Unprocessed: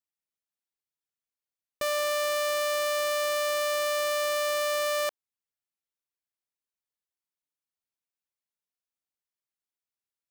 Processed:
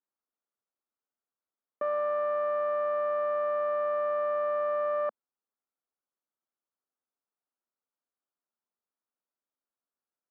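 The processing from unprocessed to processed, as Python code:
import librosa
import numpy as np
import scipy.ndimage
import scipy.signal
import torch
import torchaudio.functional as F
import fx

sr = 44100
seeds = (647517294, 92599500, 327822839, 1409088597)

y = (np.kron(x[::3], np.eye(3)[0]) * 3)[:len(x)]
y = scipy.signal.sosfilt(scipy.signal.cheby1(3, 1.0, [220.0, 1400.0], 'bandpass', fs=sr, output='sos'), y)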